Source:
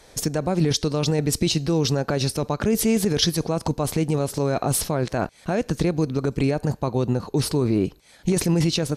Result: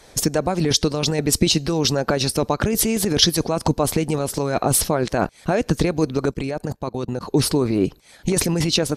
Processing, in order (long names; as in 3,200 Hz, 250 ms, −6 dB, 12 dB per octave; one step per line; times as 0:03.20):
harmonic and percussive parts rebalanced percussive +8 dB
0:06.31–0:07.21: output level in coarse steps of 23 dB
level −2 dB